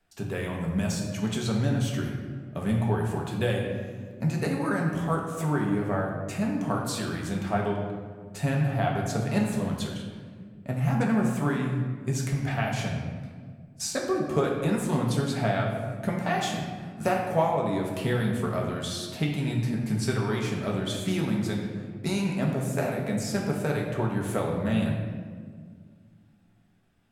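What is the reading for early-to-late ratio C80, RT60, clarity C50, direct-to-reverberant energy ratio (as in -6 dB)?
5.0 dB, 1.8 s, 3.0 dB, -2.0 dB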